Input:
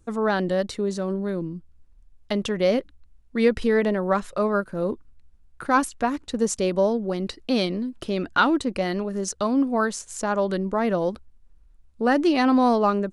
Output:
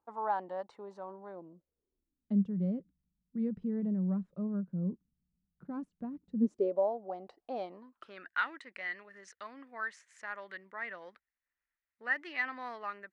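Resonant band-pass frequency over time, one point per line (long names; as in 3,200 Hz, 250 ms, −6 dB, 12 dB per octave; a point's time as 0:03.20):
resonant band-pass, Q 5.9
0:01.28 880 Hz
0:02.47 180 Hz
0:06.33 180 Hz
0:06.83 740 Hz
0:07.59 740 Hz
0:08.33 1,900 Hz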